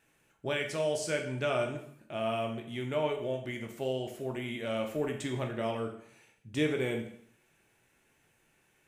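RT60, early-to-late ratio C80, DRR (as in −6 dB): 0.65 s, 11.0 dB, 2.5 dB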